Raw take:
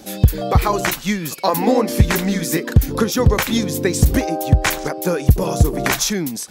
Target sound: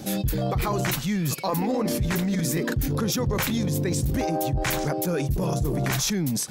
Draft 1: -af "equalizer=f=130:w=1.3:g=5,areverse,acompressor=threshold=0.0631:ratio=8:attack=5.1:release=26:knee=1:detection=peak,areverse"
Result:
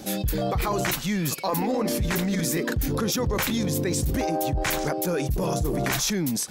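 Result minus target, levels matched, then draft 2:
125 Hz band -2.5 dB
-af "equalizer=f=130:w=1.3:g=13,areverse,acompressor=threshold=0.0631:ratio=8:attack=5.1:release=26:knee=1:detection=peak,areverse"

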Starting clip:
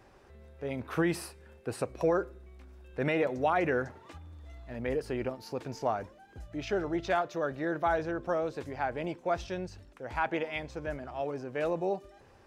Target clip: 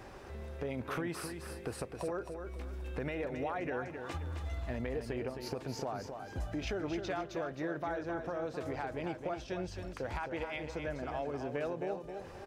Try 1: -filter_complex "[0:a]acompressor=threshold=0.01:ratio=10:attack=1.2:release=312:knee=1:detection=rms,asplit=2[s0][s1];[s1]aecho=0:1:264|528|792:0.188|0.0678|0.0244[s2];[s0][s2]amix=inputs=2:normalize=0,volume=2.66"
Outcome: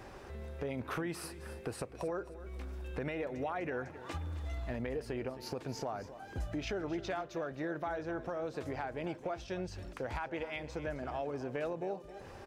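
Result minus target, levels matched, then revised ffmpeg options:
echo-to-direct -7.5 dB
-filter_complex "[0:a]acompressor=threshold=0.01:ratio=10:attack=1.2:release=312:knee=1:detection=rms,asplit=2[s0][s1];[s1]aecho=0:1:264|528|792|1056:0.447|0.161|0.0579|0.0208[s2];[s0][s2]amix=inputs=2:normalize=0,volume=2.66"

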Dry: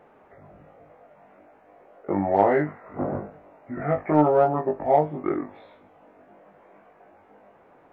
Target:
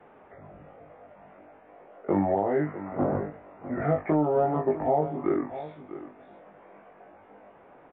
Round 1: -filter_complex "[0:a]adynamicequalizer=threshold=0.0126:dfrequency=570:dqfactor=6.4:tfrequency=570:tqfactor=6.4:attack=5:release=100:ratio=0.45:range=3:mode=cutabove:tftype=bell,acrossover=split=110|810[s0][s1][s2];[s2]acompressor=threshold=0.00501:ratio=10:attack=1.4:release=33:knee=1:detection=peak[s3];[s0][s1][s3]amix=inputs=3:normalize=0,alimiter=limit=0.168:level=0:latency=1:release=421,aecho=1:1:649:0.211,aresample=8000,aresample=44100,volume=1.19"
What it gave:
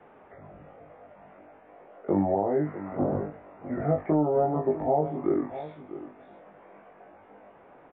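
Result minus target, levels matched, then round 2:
compression: peak gain reduction +10 dB
-filter_complex "[0:a]adynamicequalizer=threshold=0.0126:dfrequency=570:dqfactor=6.4:tfrequency=570:tqfactor=6.4:attack=5:release=100:ratio=0.45:range=3:mode=cutabove:tftype=bell,acrossover=split=110|810[s0][s1][s2];[s2]acompressor=threshold=0.0178:ratio=10:attack=1.4:release=33:knee=1:detection=peak[s3];[s0][s1][s3]amix=inputs=3:normalize=0,alimiter=limit=0.168:level=0:latency=1:release=421,aecho=1:1:649:0.211,aresample=8000,aresample=44100,volume=1.19"

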